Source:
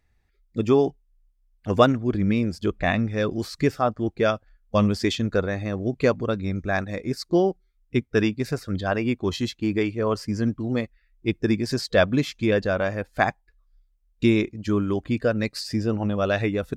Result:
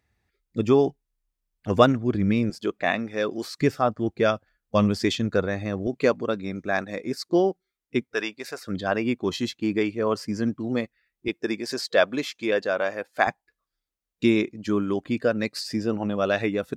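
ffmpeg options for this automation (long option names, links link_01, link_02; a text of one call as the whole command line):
ffmpeg -i in.wav -af "asetnsamples=nb_out_samples=441:pad=0,asendcmd='2.5 highpass f 290;3.61 highpass f 100;5.87 highpass f 210;8.14 highpass f 600;8.67 highpass f 160;11.28 highpass f 370;13.27 highpass f 170',highpass=81" out.wav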